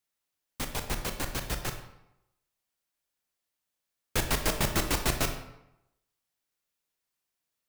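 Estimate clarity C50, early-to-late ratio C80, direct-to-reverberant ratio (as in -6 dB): 8.0 dB, 10.5 dB, 5.5 dB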